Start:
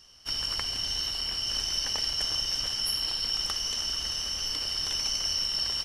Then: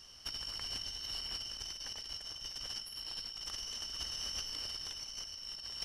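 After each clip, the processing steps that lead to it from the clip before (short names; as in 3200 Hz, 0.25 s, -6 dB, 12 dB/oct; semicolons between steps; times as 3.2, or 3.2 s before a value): negative-ratio compressor -35 dBFS, ratio -0.5; gain -6 dB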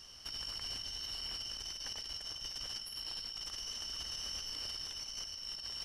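limiter -33.5 dBFS, peak gain reduction 7.5 dB; gain +1.5 dB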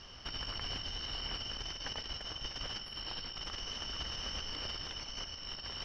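air absorption 240 m; gain +9.5 dB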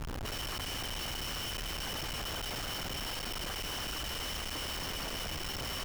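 Schmitt trigger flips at -46.5 dBFS; gain +4 dB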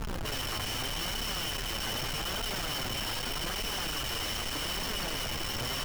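flange 0.82 Hz, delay 4.2 ms, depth 5.5 ms, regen +44%; gain +8 dB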